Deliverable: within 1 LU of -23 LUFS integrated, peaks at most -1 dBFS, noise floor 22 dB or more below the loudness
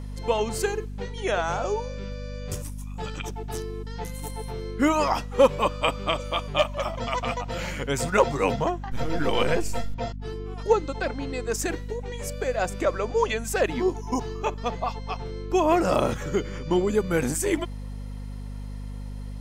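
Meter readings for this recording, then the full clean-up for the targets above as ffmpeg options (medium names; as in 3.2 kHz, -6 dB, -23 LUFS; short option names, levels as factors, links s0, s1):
hum 50 Hz; highest harmonic 250 Hz; hum level -32 dBFS; loudness -27.0 LUFS; peak level -7.5 dBFS; loudness target -23.0 LUFS
-> -af "bandreject=f=50:t=h:w=6,bandreject=f=100:t=h:w=6,bandreject=f=150:t=h:w=6,bandreject=f=200:t=h:w=6,bandreject=f=250:t=h:w=6"
-af "volume=1.58"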